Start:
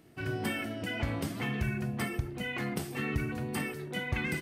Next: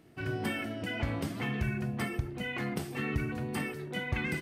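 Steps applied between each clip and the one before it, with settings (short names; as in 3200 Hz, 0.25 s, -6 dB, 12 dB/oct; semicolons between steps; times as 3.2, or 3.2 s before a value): high shelf 6000 Hz -5 dB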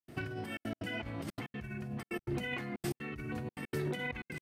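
negative-ratio compressor -41 dBFS, ratio -1; step gate ".xxxxxx.x" 185 bpm -60 dB; gain +2 dB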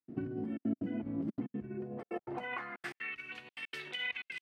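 band-pass sweep 250 Hz -> 2900 Hz, 1.5–3.25; gain +9 dB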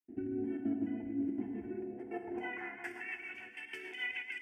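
plate-style reverb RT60 2.6 s, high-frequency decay 0.9×, DRR 3.5 dB; rotary speaker horn 1.1 Hz, later 6.7 Hz, at 1.86; fixed phaser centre 800 Hz, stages 8; gain +2 dB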